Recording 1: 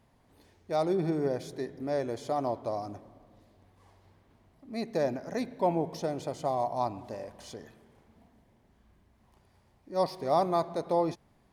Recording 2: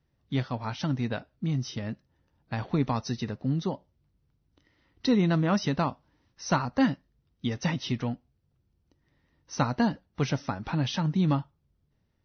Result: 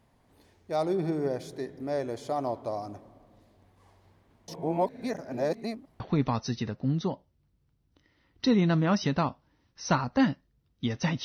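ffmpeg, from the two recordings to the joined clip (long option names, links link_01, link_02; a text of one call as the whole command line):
ffmpeg -i cue0.wav -i cue1.wav -filter_complex "[0:a]apad=whole_dur=11.24,atrim=end=11.24,asplit=2[link_01][link_02];[link_01]atrim=end=4.482[link_03];[link_02]atrim=start=4.478:end=6.002,asetpts=PTS-STARTPTS,areverse[link_04];[1:a]atrim=start=2.608:end=7.85[link_05];[link_03][link_04]acrossfade=duration=0.004:curve1=hsin:curve2=hsin[link_06];[link_06][link_05]acrossfade=duration=0.004:curve1=hsin:curve2=hsin" out.wav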